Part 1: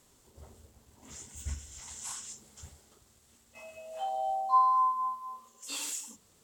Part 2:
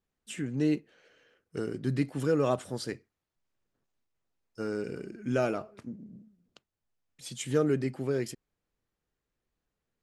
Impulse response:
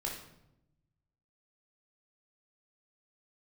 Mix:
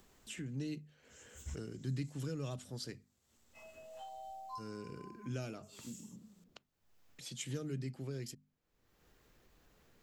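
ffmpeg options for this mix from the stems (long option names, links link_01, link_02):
-filter_complex "[0:a]volume=-7.5dB[link_01];[1:a]bandreject=frequency=50:width_type=h:width=6,bandreject=frequency=100:width_type=h:width=6,bandreject=frequency=150:width_type=h:width=6,bandreject=frequency=200:width_type=h:width=6,bandreject=frequency=250:width_type=h:width=6,acompressor=mode=upward:threshold=-44dB:ratio=2.5,volume=-4dB,asplit=2[link_02][link_03];[link_03]apad=whole_len=283975[link_04];[link_01][link_04]sidechaincompress=threshold=-49dB:ratio=5:attack=16:release=449[link_05];[link_05][link_02]amix=inputs=2:normalize=0,equalizer=frequency=9300:width=5:gain=-10,acrossover=split=190|3000[link_06][link_07][link_08];[link_07]acompressor=threshold=-50dB:ratio=3[link_09];[link_06][link_09][link_08]amix=inputs=3:normalize=0"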